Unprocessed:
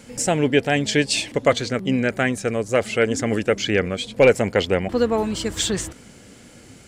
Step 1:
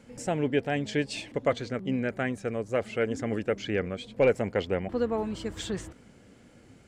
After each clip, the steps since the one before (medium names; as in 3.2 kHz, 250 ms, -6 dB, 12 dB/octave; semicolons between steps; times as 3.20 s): treble shelf 3.3 kHz -11.5 dB; trim -8 dB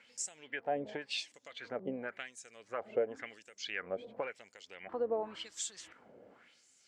compression 10:1, threshold -30 dBFS, peak gain reduction 12.5 dB; LFO band-pass sine 0.93 Hz 530–7400 Hz; trim +6 dB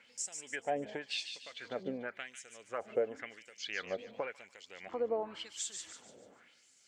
feedback echo behind a high-pass 146 ms, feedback 38%, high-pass 2.6 kHz, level -6 dB